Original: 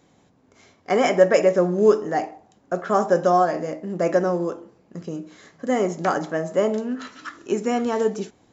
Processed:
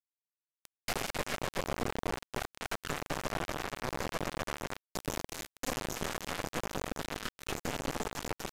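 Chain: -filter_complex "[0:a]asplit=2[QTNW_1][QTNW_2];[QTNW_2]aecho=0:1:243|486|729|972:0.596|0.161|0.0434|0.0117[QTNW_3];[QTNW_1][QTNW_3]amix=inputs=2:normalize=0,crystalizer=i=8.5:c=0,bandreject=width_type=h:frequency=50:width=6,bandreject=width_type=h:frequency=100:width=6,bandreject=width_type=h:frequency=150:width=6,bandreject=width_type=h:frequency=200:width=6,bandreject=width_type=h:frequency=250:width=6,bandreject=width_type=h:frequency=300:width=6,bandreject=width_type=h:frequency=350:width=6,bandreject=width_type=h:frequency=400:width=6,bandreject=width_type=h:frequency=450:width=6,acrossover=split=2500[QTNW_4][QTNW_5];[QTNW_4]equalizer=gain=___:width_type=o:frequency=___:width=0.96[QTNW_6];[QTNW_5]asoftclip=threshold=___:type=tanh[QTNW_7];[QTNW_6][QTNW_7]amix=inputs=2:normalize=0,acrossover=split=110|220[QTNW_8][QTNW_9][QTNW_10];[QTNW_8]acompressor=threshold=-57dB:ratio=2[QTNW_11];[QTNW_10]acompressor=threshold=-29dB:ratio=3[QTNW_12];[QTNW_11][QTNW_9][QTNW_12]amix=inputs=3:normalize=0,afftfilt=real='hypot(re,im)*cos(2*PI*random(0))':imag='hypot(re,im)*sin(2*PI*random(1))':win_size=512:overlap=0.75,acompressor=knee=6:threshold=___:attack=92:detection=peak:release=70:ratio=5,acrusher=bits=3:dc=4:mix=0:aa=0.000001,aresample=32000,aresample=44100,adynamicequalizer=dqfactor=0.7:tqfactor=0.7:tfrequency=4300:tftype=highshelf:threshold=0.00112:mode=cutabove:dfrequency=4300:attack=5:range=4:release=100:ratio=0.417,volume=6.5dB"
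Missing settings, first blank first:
6, 100, -16dB, -44dB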